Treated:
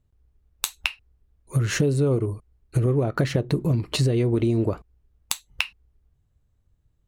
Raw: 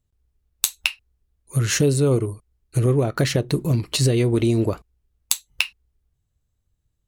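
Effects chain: high shelf 2900 Hz -12 dB; compressor 3:1, threshold -27 dBFS, peak gain reduction 9.5 dB; gain +6 dB

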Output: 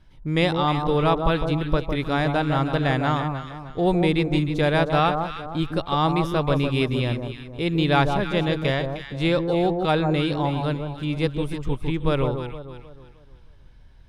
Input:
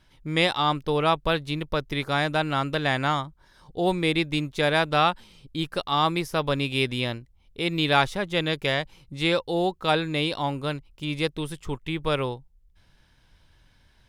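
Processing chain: tilt -2 dB/oct; echo with dull and thin repeats by turns 0.155 s, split 1200 Hz, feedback 58%, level -5 dB

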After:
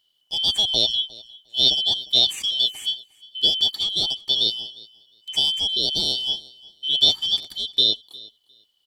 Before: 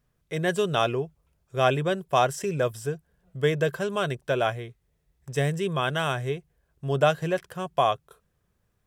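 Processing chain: four-band scrambler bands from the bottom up 3412; feedback echo 0.355 s, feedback 16%, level -22 dB; gain +3.5 dB

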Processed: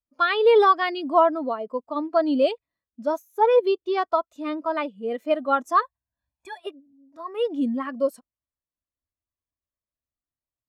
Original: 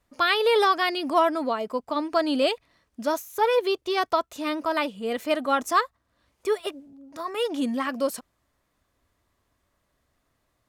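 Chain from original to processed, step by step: 5.82–6.6 comb 1.2 ms, depth 94%; spectral expander 1.5:1; gain +1.5 dB

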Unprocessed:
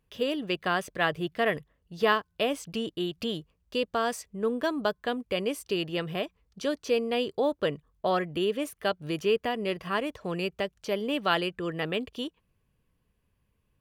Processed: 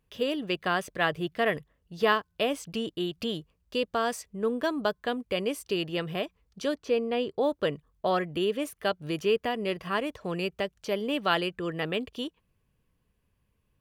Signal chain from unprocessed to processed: 6.74–7.41 high shelf 3900 Hz -11 dB

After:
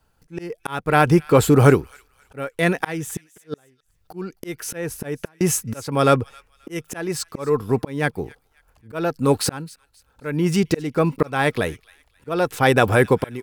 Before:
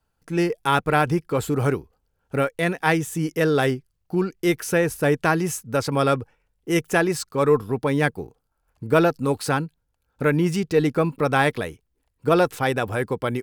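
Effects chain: auto swell 0.591 s; 3–5.41 flipped gate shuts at -24 dBFS, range -39 dB; thin delay 0.266 s, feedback 30%, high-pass 1900 Hz, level -20 dB; gain +9 dB

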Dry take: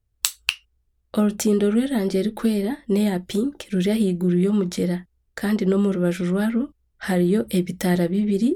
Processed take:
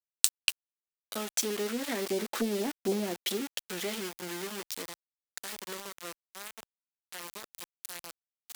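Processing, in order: Doppler pass-by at 2.68, 6 m/s, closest 2.9 m; treble ducked by the level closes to 620 Hz, closed at -19.5 dBFS; HPF 230 Hz 24 dB/oct; high shelf 2600 Hz +5 dB; sample gate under -36 dBFS; tilt +3.5 dB/oct; Doppler distortion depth 0.26 ms

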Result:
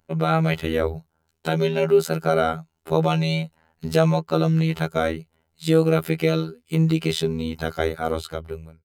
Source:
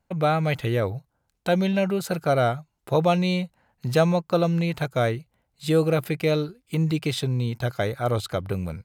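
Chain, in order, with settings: ending faded out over 0.96 s; in parallel at +3 dB: limiter -15 dBFS, peak gain reduction 7 dB; on the sum: small resonant body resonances 390/1400/3000 Hz, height 9 dB, ringing for 85 ms; robotiser 80.5 Hz; gain -3.5 dB

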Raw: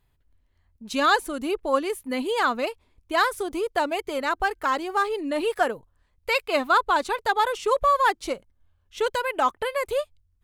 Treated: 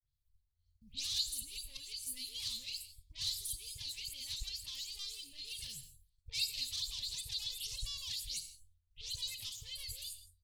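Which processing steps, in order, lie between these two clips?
spectral delay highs late, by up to 0.136 s; in parallel at +2.5 dB: compressor, threshold -32 dBFS, peak gain reduction 15.5 dB; on the sum: bell 140 Hz +9 dB 0.29 oct; soft clip -20.5 dBFS, distortion -10 dB; tone controls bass -12 dB, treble -8 dB; expander -57 dBFS; elliptic band-stop 110–4400 Hz, stop band 50 dB; non-linear reverb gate 0.19 s flat, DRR 11 dB; gain +5.5 dB

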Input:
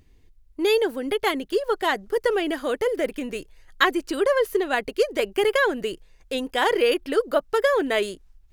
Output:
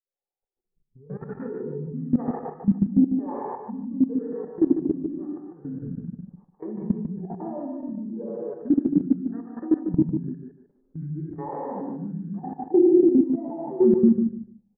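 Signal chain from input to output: tape start at the beginning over 0.79 s; wah 1.7 Hz 290–1500 Hz, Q 15; steep low-pass 3100 Hz 36 dB/oct; tilt -3.5 dB/oct; notch 1100 Hz, Q 5.9; speed mistake 78 rpm record played at 45 rpm; non-linear reverb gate 0.31 s flat, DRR -6 dB; in parallel at +0.5 dB: limiter -20.5 dBFS, peak gain reduction 11.5 dB; on the sum: EQ curve 270 Hz 0 dB, 420 Hz +6 dB, 700 Hz -1 dB, 1000 Hz -6 dB, 1900 Hz +5 dB; level quantiser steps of 17 dB; on a send: feedback echo 0.148 s, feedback 19%, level -7 dB; on the sum: mismatched tape noise reduction decoder only; gain +2 dB

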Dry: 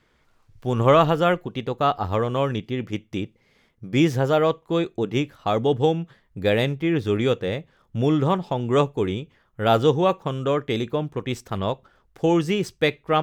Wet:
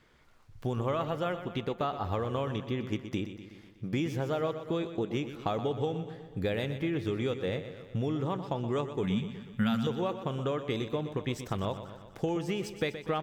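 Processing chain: compressor 6:1, threshold -29 dBFS, peak gain reduction 16.5 dB; 9.03–9.87 EQ curve 110 Hz 0 dB, 230 Hz +13 dB, 340 Hz -19 dB, 1600 Hz +3 dB; feedback echo 0.123 s, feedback 60%, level -11 dB

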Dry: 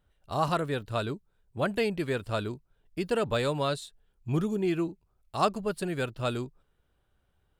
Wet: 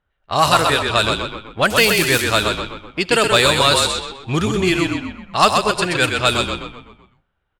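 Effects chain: 1.7–2.24 switching spikes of -30.5 dBFS; tilt shelf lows -8.5 dB, about 1100 Hz; sample leveller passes 2; 5.42–5.92 high shelf 10000 Hz -6 dB; frequency-shifting echo 0.127 s, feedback 50%, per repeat -37 Hz, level -4.5 dB; on a send at -19.5 dB: reverb RT60 0.50 s, pre-delay 61 ms; on the sum: low-pass opened by the level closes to 1700 Hz, open at -18 dBFS; gain +7.5 dB

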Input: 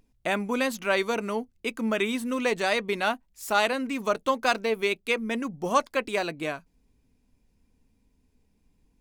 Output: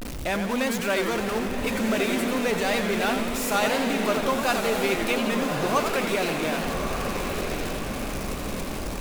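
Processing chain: zero-crossing step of -23.5 dBFS; vibrato 1.6 Hz 24 cents; diffused feedback echo 1.186 s, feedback 52%, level -5 dB; warbling echo 88 ms, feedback 68%, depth 212 cents, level -7.5 dB; gain -4 dB

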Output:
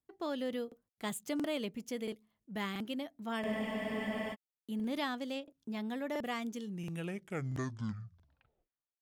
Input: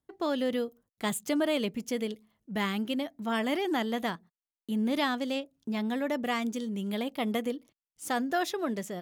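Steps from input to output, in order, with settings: tape stop at the end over 2.53 s; crackling interface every 0.68 s, samples 2048, repeat, from 0.67; spectral freeze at 3.47, 0.85 s; gain -7.5 dB

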